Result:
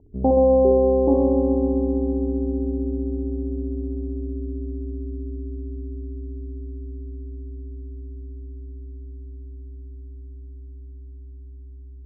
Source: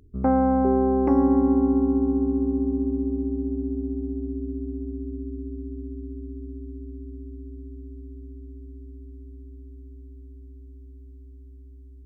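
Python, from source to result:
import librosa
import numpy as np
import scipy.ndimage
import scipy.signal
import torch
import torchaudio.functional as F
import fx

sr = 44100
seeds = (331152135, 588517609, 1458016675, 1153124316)

y = scipy.signal.sosfilt(scipy.signal.butter(8, 880.0, 'lowpass', fs=sr, output='sos'), x)
y = fx.peak_eq(y, sr, hz=460.0, db=4.5, octaves=1.5)
y = fx.echo_feedback(y, sr, ms=63, feedback_pct=56, wet_db=-4.0)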